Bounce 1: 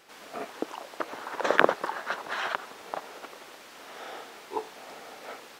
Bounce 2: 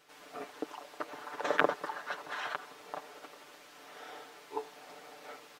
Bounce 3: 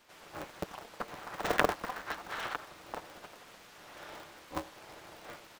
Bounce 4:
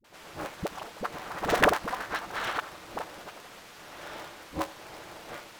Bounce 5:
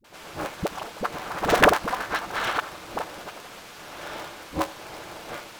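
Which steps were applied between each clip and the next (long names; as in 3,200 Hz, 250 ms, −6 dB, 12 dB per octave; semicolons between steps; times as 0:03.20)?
comb filter 6.8 ms; level −8 dB
ring modulator with a square carrier 120 Hz
all-pass dispersion highs, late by 44 ms, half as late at 380 Hz; level +6 dB
notch filter 1,900 Hz, Q 27; level +5.5 dB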